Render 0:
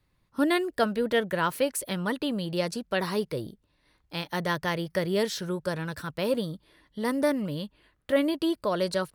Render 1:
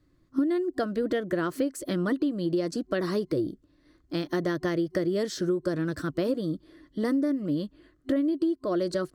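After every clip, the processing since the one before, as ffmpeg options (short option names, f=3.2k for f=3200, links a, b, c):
-af "superequalizer=6b=3.55:9b=0.355:12b=0.631:14b=1.78:15b=2.24,acompressor=threshold=-27dB:ratio=16,highshelf=f=2.3k:g=-10.5,volume=4.5dB"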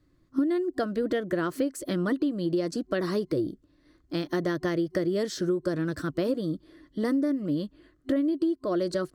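-af anull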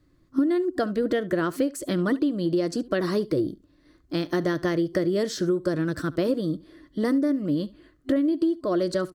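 -af "aecho=1:1:71:0.0944,volume=3dB"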